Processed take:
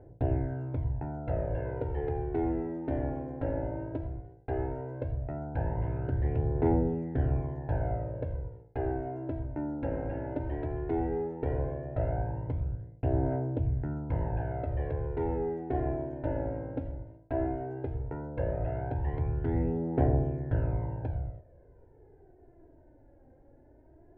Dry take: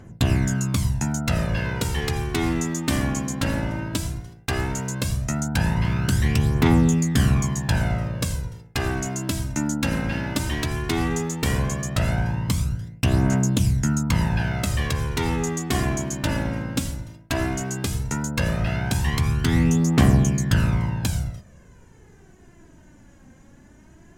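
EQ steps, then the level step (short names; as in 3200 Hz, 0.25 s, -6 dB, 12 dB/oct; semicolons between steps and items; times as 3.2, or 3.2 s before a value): LPF 1200 Hz 24 dB/oct; low shelf 200 Hz -6.5 dB; fixed phaser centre 480 Hz, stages 4; 0.0 dB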